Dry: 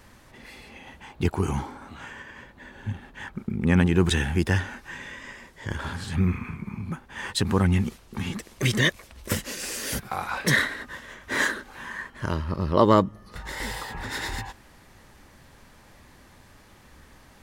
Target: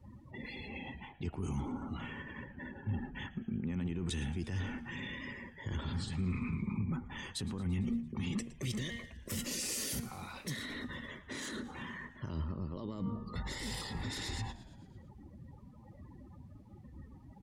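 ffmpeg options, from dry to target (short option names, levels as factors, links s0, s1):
-filter_complex "[0:a]highpass=65,bandreject=f=1600:w=7.2,bandreject=f=233.5:t=h:w=4,bandreject=f=467:t=h:w=4,bandreject=f=700.5:t=h:w=4,bandreject=f=934:t=h:w=4,bandreject=f=1167.5:t=h:w=4,bandreject=f=1401:t=h:w=4,bandreject=f=1634.5:t=h:w=4,bandreject=f=1868:t=h:w=4,bandreject=f=2101.5:t=h:w=4,bandreject=f=2335:t=h:w=4,bandreject=f=2568.5:t=h:w=4,bandreject=f=2802:t=h:w=4,bandreject=f=3035.5:t=h:w=4,bandreject=f=3269:t=h:w=4,afftdn=nr=31:nf=-46,adynamicequalizer=threshold=0.00794:dfrequency=240:dqfactor=5.8:tfrequency=240:tqfactor=5.8:attack=5:release=100:ratio=0.375:range=2.5:mode=boostabove:tftype=bell,areverse,acompressor=threshold=0.0178:ratio=20,areverse,alimiter=level_in=3.16:limit=0.0631:level=0:latency=1:release=18,volume=0.316,acrossover=split=340|3000[s0][s1][s2];[s1]acompressor=threshold=0.00178:ratio=6[s3];[s0][s3][s2]amix=inputs=3:normalize=0,asplit=2[s4][s5];[s5]acrusher=bits=3:mix=0:aa=0.5,volume=0.316[s6];[s4][s6]amix=inputs=2:normalize=0,asplit=7[s7][s8][s9][s10][s11][s12][s13];[s8]adelay=113,afreqshift=-74,volume=0.126[s14];[s9]adelay=226,afreqshift=-148,volume=0.0767[s15];[s10]adelay=339,afreqshift=-222,volume=0.0468[s16];[s11]adelay=452,afreqshift=-296,volume=0.0285[s17];[s12]adelay=565,afreqshift=-370,volume=0.0174[s18];[s13]adelay=678,afreqshift=-444,volume=0.0106[s19];[s7][s14][s15][s16][s17][s18][s19]amix=inputs=7:normalize=0,volume=2.11"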